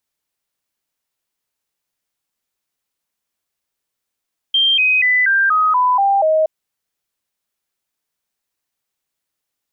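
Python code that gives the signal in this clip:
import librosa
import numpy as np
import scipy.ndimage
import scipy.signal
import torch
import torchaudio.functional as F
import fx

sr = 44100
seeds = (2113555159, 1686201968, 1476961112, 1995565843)

y = fx.stepped_sweep(sr, from_hz=3170.0, direction='down', per_octave=3, tones=8, dwell_s=0.24, gap_s=0.0, level_db=-11.0)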